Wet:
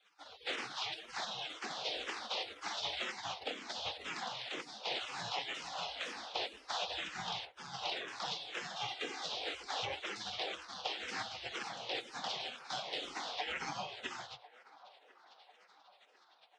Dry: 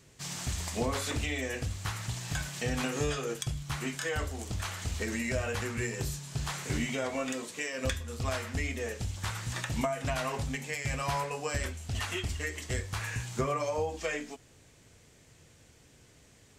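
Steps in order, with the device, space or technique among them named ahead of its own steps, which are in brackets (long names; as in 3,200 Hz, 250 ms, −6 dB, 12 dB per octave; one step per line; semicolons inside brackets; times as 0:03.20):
gate on every frequency bin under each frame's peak −25 dB weak
0:08.76–0:09.24: comb filter 2.5 ms
barber-pole phaser into a guitar amplifier (frequency shifter mixed with the dry sound −2 Hz; soft clipping −39 dBFS, distortion −21 dB; loudspeaker in its box 89–4,500 Hz, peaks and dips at 120 Hz +9 dB, 490 Hz +5 dB, 760 Hz +9 dB, 3,500 Hz +4 dB)
delay with a band-pass on its return 1,046 ms, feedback 51%, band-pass 850 Hz, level −17 dB
level +11.5 dB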